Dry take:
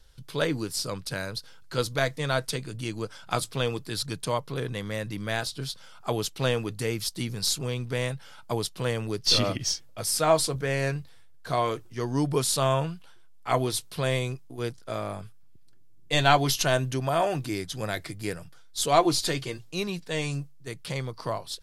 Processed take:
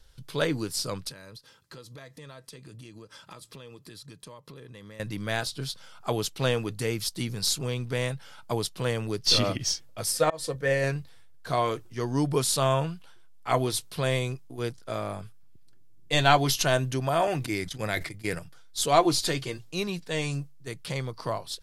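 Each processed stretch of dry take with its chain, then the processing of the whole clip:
0:01.10–0:05.00: notch comb filter 730 Hz + downward compressor 10 to 1, threshold −42 dBFS
0:10.12–0:10.84: volume swells 184 ms + hollow resonant body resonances 520/1,800 Hz, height 15 dB, ringing for 90 ms + expander for the loud parts, over −33 dBFS
0:17.27–0:18.39: noise gate −35 dBFS, range −16 dB + parametric band 2,100 Hz +6.5 dB 0.4 octaves + level that may fall only so fast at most 73 dB per second
whole clip: no processing

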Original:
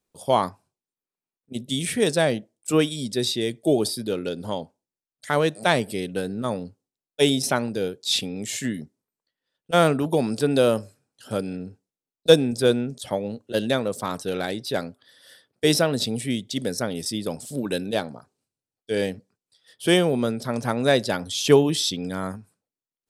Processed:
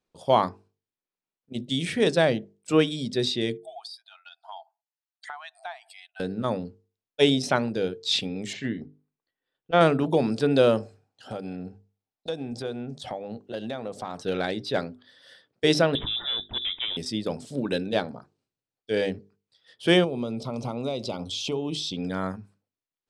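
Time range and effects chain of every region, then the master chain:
0:03.57–0:06.20: expanding power law on the bin magnitudes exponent 1.5 + linear-phase brick-wall high-pass 650 Hz + downward compressor 4 to 1, threshold −35 dBFS
0:08.53–0:09.81: high-frequency loss of the air 190 metres + comb filter 2.6 ms, depth 30%
0:10.79–0:14.19: parametric band 760 Hz +10 dB 0.36 octaves + downward compressor 4 to 1, threshold −30 dBFS
0:15.95–0:16.97: hard clipping −23.5 dBFS + voice inversion scrambler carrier 3,700 Hz
0:20.04–0:21.97: downward compressor 5 to 1, threshold −25 dBFS + Butterworth band-reject 1,700 Hz, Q 1.6
whole clip: low-pass filter 4,800 Hz 12 dB per octave; mains-hum notches 50/100/150/200/250/300/350/400/450 Hz

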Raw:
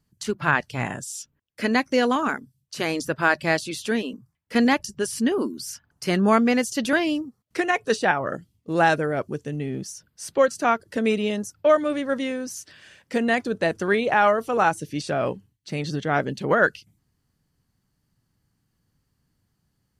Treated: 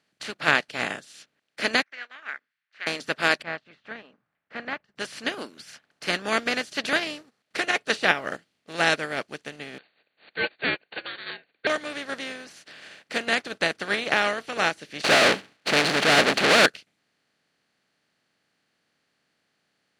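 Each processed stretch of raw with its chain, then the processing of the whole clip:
0:01.82–0:02.87: flat-topped band-pass 1,800 Hz, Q 2.7 + high-frequency loss of the air 97 metres
0:03.42–0:04.96: low-pass filter 1,500 Hz 24 dB per octave + parametric band 360 Hz −13.5 dB 1.7 octaves
0:09.78–0:11.67: linear-phase brick-wall band-pass 470–3,600 Hz + ring modulation 1,000 Hz
0:15.04–0:16.66: running median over 25 samples + mid-hump overdrive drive 37 dB, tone 5,100 Hz, clips at −10 dBFS
whole clip: compressor on every frequency bin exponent 0.4; meter weighting curve D; expander for the loud parts 2.5 to 1, over −30 dBFS; level −7 dB

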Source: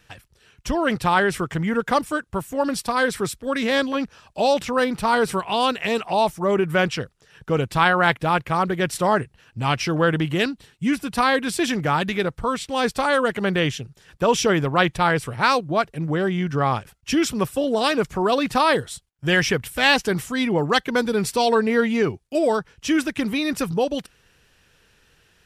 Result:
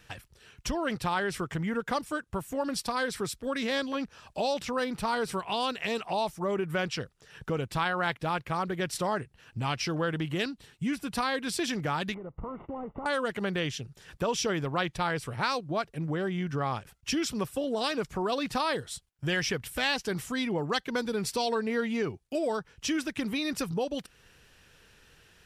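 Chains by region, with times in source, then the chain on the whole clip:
0:12.14–0:13.06: variable-slope delta modulation 16 kbit/s + Savitzky-Golay smoothing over 65 samples + downward compressor 16 to 1, threshold −31 dBFS
whole clip: dynamic equaliser 4,800 Hz, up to +5 dB, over −38 dBFS, Q 1.4; downward compressor 2 to 1, threshold −35 dBFS

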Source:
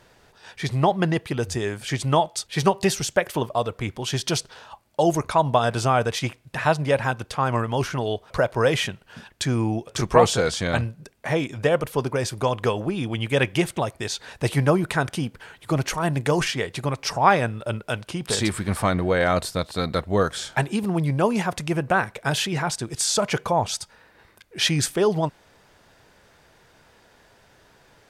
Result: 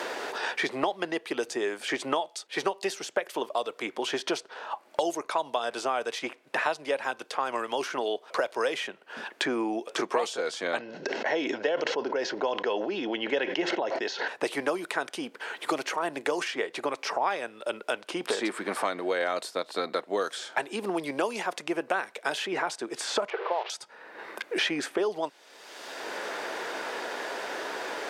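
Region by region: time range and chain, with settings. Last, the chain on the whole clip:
0:10.79–0:14.28: Butterworth low-pass 6,200 Hz 48 dB per octave + notch comb filter 1,200 Hz + level that may fall only so fast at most 22 dB per second
0:23.30–0:23.70: linear delta modulator 32 kbit/s, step −23 dBFS + linear-phase brick-wall high-pass 340 Hz + high-frequency loss of the air 470 metres
whole clip: high-pass filter 310 Hz 24 dB per octave; high-shelf EQ 10,000 Hz −10 dB; multiband upward and downward compressor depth 100%; level −6 dB

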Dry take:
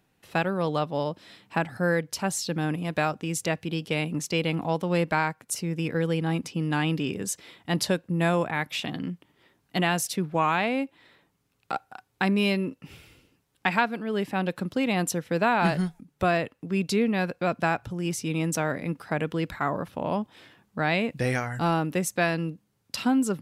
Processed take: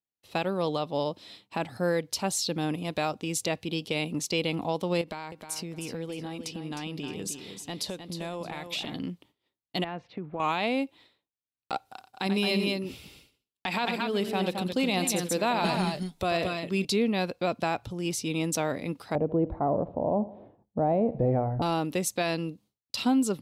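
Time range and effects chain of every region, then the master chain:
0:05.01–0:08.95: downward compressor 8 to 1, threshold −30 dBFS + repeating echo 310 ms, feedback 25%, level −8 dB
0:09.84–0:10.40: low-pass filter 2,100 Hz 24 dB per octave + downward compressor 4 to 1, threshold −30 dBFS
0:11.85–0:16.85: high-shelf EQ 3,800 Hz +4.5 dB + multi-tap delay 88/216/221 ms −12/−13/−7.5 dB
0:19.15–0:21.62: low-pass with resonance 690 Hz, resonance Q 2 + spectral tilt −2 dB per octave + repeating echo 77 ms, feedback 51%, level −20.5 dB
whole clip: downward expander −48 dBFS; graphic EQ with 15 bands 160 Hz −5 dB, 1,600 Hz −8 dB, 4,000 Hz +6 dB; brickwall limiter −17 dBFS

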